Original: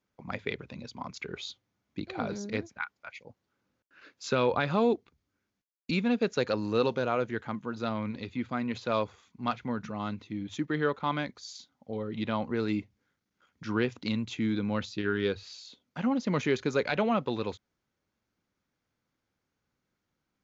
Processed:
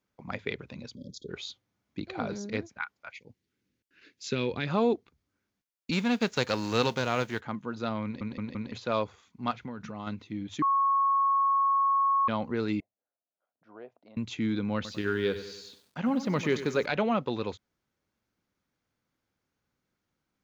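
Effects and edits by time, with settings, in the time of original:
0:00.95–0:01.29: time-frequency box erased 590–3,200 Hz
0:03.15–0:04.67: flat-topped bell 880 Hz −12.5 dB
0:05.91–0:07.39: spectral envelope flattened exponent 0.6
0:08.04: stutter in place 0.17 s, 4 plays
0:09.51–0:10.07: downward compressor 5 to 1, threshold −34 dBFS
0:10.62–0:12.28: beep over 1,100 Hz −21.5 dBFS
0:12.80–0:14.17: resonant band-pass 660 Hz, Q 7.3
0:14.75–0:16.86: feedback echo at a low word length 96 ms, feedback 55%, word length 9 bits, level −12 dB

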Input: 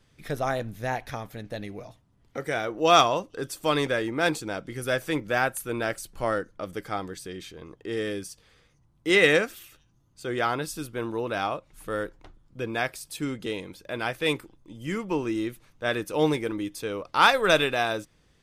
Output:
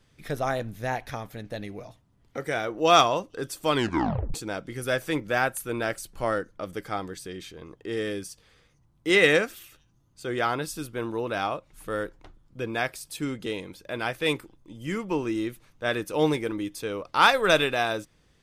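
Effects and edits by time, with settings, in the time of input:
0:03.73: tape stop 0.61 s

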